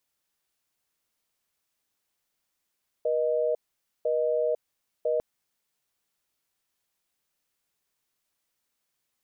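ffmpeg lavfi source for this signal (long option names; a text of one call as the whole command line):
ffmpeg -f lavfi -i "aevalsrc='0.0531*(sin(2*PI*480*t)+sin(2*PI*620*t))*clip(min(mod(t,1),0.5-mod(t,1))/0.005,0,1)':duration=2.15:sample_rate=44100" out.wav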